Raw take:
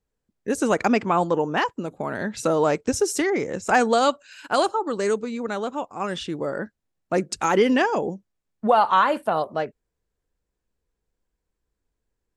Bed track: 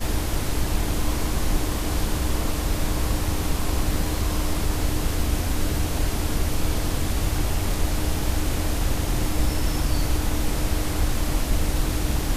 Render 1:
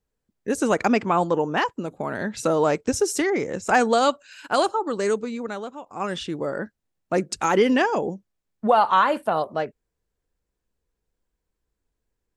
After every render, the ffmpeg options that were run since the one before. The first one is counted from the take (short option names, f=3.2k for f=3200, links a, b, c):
-filter_complex "[0:a]asplit=2[a][b];[a]atrim=end=5.86,asetpts=PTS-STARTPTS,afade=t=out:st=5.28:d=0.58:silence=0.251189[c];[b]atrim=start=5.86,asetpts=PTS-STARTPTS,afade=t=in:d=0.004:c=hsin:silence=0.251189[d];[c][d]concat=n=2:v=0:a=1"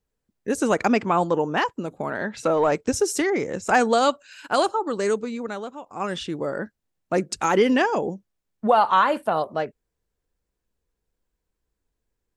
-filter_complex "[0:a]asettb=1/sr,asplit=3[a][b][c];[a]atrim=end=2.104[d];[b]atrim=start=2.1:end=2.72,asetpts=PTS-STARTPTS,afade=t=in:d=0.004:c=qsin,afade=t=out:st=0.616:d=0.004:c=qsin,asplit=2[e][f];[f]highpass=f=720:p=1,volume=9dB,asoftclip=type=tanh:threshold=-9dB[g];[e][g]amix=inputs=2:normalize=0,lowpass=f=1.8k:p=1,volume=-6dB[h];[c]atrim=start=2.716[i];[d][h]acrossfade=d=0.004:c1=hsin:c2=qsin[j];[j][i]acrossfade=d=0.004:c1=qsin:c2=hsin"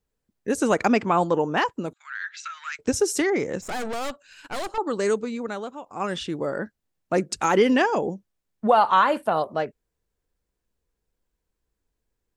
-filter_complex "[0:a]asettb=1/sr,asplit=3[a][b][c];[a]atrim=end=1.934[d];[b]atrim=start=1.93:end=2.79,asetpts=PTS-STARTPTS,afade=t=in:d=0.004:c=qsin,afade=t=out:st=0.856:d=0.004:c=qsin,asuperpass=centerf=3300:order=12:qfactor=0.55[e];[c]atrim=start=2.786[f];[d][e]acrossfade=d=0.004:c1=hsin:c2=qsin[g];[g][f]acrossfade=d=0.004:c1=qsin:c2=hsin,asettb=1/sr,asplit=3[h][i][j];[h]atrim=end=3.614[k];[i]atrim=start=3.61:end=4.78,asetpts=PTS-STARTPTS,afade=t=in:d=0.004:c=qsin,afade=t=out:st=1.166:d=0.004:c=qsin,aeval=exprs='(tanh(25.1*val(0)+0.7)-tanh(0.7))/25.1':c=same[l];[j]atrim=start=4.776[m];[k][l]acrossfade=d=0.004:c1=hsin:c2=qsin[n];[n][m]acrossfade=d=0.004:c1=qsin:c2=hsin"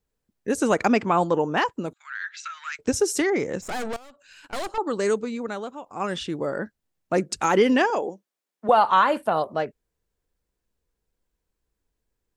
-filter_complex "[0:a]asettb=1/sr,asplit=3[a][b][c];[a]atrim=end=3.964[d];[b]atrim=start=3.96:end=4.53,asetpts=PTS-STARTPTS,afade=t=in:d=0.004:c=qsin,afade=t=out:st=0.566:d=0.004:c=qsin,acompressor=threshold=-44dB:ratio=12:attack=3.2:release=140:knee=1:detection=peak[e];[c]atrim=start=4.526[f];[d][e]acrossfade=d=0.004:c1=hsin:c2=qsin[g];[g][f]acrossfade=d=0.004:c1=qsin:c2=hsin,asettb=1/sr,asplit=3[h][i][j];[h]atrim=end=7.904[k];[i]atrim=start=7.9:end=8.69,asetpts=PTS-STARTPTS,afade=t=in:d=0.004:c=qsin,afade=t=out:st=0.786:d=0.004:c=qsin,highpass=370[l];[j]atrim=start=8.686[m];[k][l]acrossfade=d=0.004:c1=hsin:c2=qsin[n];[n][m]acrossfade=d=0.004:c1=qsin:c2=hsin"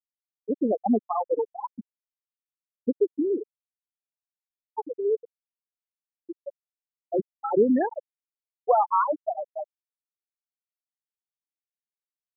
-af "afftfilt=real='re*gte(hypot(re,im),0.562)':imag='im*gte(hypot(re,im),0.562)':win_size=1024:overlap=0.75,lowpass=f=1k:p=1"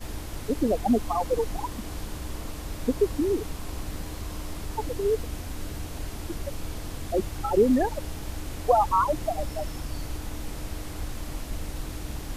-filter_complex "[1:a]volume=-11dB[a];[0:a][a]amix=inputs=2:normalize=0"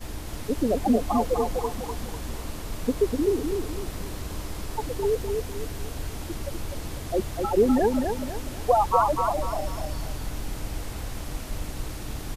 -af "aecho=1:1:249|498|747|996|1245:0.596|0.226|0.086|0.0327|0.0124"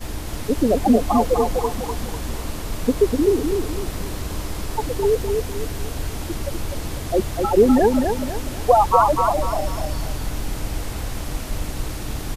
-af "volume=6dB,alimiter=limit=-2dB:level=0:latency=1"